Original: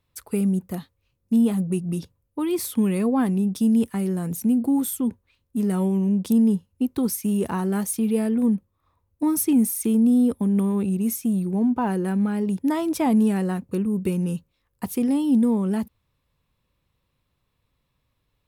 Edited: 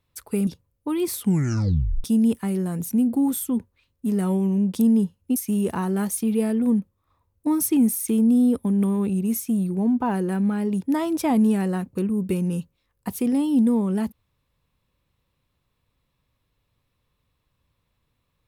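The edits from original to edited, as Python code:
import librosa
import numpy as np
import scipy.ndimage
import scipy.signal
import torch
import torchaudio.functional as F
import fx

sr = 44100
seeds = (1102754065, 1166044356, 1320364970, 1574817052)

y = fx.edit(x, sr, fx.cut(start_s=0.47, length_s=1.51),
    fx.tape_stop(start_s=2.71, length_s=0.84),
    fx.cut(start_s=6.87, length_s=0.25), tone=tone)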